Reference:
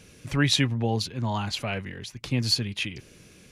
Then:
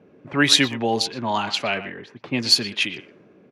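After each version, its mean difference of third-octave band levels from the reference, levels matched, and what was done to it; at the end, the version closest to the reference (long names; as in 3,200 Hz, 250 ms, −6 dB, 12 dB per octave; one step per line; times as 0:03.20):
6.0 dB: high-pass filter 290 Hz 12 dB per octave
notch filter 490 Hz, Q 12
low-pass that shuts in the quiet parts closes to 650 Hz, open at −24.5 dBFS
far-end echo of a speakerphone 120 ms, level −13 dB
level +8 dB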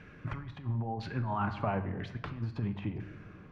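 10.0 dB: parametric band 500 Hz −6 dB 0.34 octaves
compressor whose output falls as the input rises −30 dBFS, ratio −0.5
auto-filter low-pass saw down 1 Hz 790–1,700 Hz
rectangular room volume 460 cubic metres, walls mixed, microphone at 0.45 metres
level −4 dB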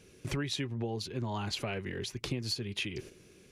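4.0 dB: noise gate −48 dBFS, range −8 dB
parametric band 380 Hz +10.5 dB 0.41 octaves
downward compressor 12 to 1, threshold −31 dBFS, peak gain reduction 15.5 dB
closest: third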